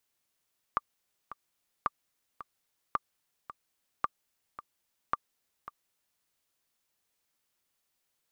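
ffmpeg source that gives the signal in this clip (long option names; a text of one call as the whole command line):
ffmpeg -f lavfi -i "aevalsrc='pow(10,(-14-14.5*gte(mod(t,2*60/110),60/110))/20)*sin(2*PI*1180*mod(t,60/110))*exp(-6.91*mod(t,60/110)/0.03)':duration=5.45:sample_rate=44100" out.wav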